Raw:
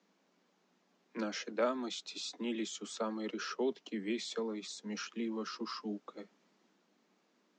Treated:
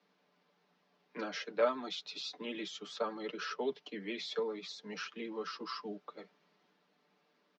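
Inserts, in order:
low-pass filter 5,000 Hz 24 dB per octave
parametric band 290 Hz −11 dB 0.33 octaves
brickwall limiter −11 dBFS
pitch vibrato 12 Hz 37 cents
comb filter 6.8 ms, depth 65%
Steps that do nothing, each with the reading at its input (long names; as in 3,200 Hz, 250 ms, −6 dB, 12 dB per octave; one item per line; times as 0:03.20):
brickwall limiter −11 dBFS: peak of its input −20.5 dBFS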